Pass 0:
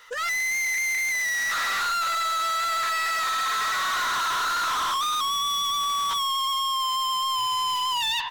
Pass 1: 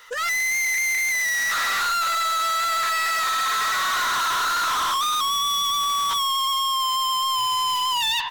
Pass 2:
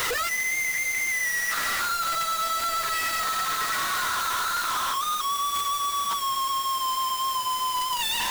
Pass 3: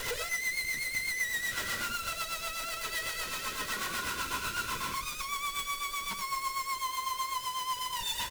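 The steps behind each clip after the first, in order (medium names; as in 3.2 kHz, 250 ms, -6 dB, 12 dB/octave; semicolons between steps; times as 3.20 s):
treble shelf 8.7 kHz +4 dB; trim +2.5 dB
one-bit comparator; word length cut 6-bit, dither triangular; flange 0.35 Hz, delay 1.7 ms, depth 9.6 ms, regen -47%
comb filter that takes the minimum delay 2 ms; delay 83 ms -10 dB; rotary cabinet horn 8 Hz; trim -4 dB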